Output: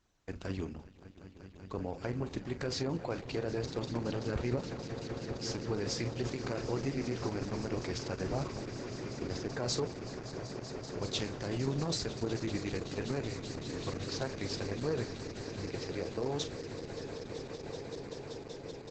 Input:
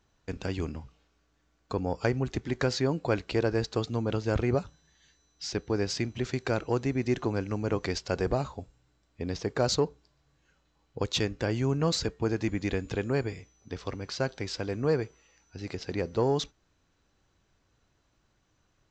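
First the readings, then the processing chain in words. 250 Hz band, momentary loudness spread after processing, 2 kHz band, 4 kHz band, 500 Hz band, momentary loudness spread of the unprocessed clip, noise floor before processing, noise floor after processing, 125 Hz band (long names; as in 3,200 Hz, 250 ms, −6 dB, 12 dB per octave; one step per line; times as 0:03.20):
−5.5 dB, 8 LU, −6.5 dB, −4.0 dB, −6.5 dB, 12 LU, −71 dBFS, −51 dBFS, −5.5 dB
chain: high-shelf EQ 6,600 Hz +2 dB
brickwall limiter −20 dBFS, peak gain reduction 6 dB
double-tracking delay 42 ms −11 dB
echo that builds up and dies away 191 ms, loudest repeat 8, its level −15 dB
level −5 dB
Opus 10 kbit/s 48,000 Hz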